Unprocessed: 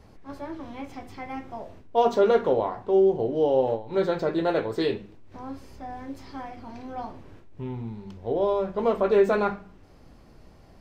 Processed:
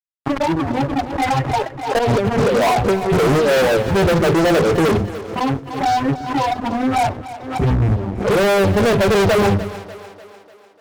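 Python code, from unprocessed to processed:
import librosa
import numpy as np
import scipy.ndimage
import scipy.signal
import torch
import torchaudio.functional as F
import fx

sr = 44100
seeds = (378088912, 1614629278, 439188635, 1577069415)

p1 = fx.octave_divider(x, sr, octaves=1, level_db=0.0)
p2 = scipy.signal.sosfilt(scipy.signal.butter(4, 61.0, 'highpass', fs=sr, output='sos'), p1)
p3 = fx.peak_eq(p2, sr, hz=1200.0, db=3.5, octaves=2.1)
p4 = fx.over_compress(p3, sr, threshold_db=-25.0, ratio=-0.5, at=(1.98, 3.49))
p5 = fx.env_flanger(p4, sr, rest_ms=9.2, full_db=-22.0)
p6 = fx.spec_topn(p5, sr, count=8)
p7 = fx.fuzz(p6, sr, gain_db=39.0, gate_db=-46.0)
p8 = p7 + fx.echo_split(p7, sr, split_hz=300.0, low_ms=121, high_ms=297, feedback_pct=52, wet_db=-15.0, dry=0)
y = fx.pre_swell(p8, sr, db_per_s=84.0)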